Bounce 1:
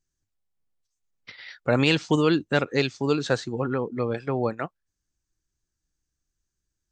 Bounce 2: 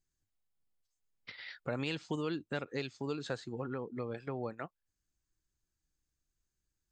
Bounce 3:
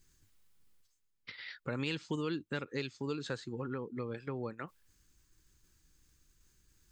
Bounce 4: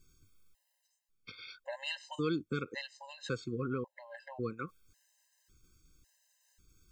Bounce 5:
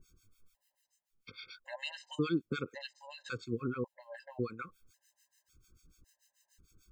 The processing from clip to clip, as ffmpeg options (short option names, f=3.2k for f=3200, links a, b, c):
-af "acompressor=threshold=-38dB:ratio=2,bandreject=f=5.8k:w=9.3,volume=-4dB"
-af "equalizer=f=690:w=3.2:g=-11,areverse,acompressor=mode=upward:threshold=-53dB:ratio=2.5,areverse,volume=1dB"
-af "afftfilt=real='re*gt(sin(2*PI*0.91*pts/sr)*(1-2*mod(floor(b*sr/1024/530),2)),0)':imag='im*gt(sin(2*PI*0.91*pts/sr)*(1-2*mod(floor(b*sr/1024/530),2)),0)':win_size=1024:overlap=0.75,volume=3.5dB"
-filter_complex "[0:a]acrossover=split=1200[a][b];[a]aeval=exprs='val(0)*(1-1/2+1/2*cos(2*PI*6.8*n/s))':c=same[c];[b]aeval=exprs='val(0)*(1-1/2-1/2*cos(2*PI*6.8*n/s))':c=same[d];[c][d]amix=inputs=2:normalize=0,volume=4.5dB"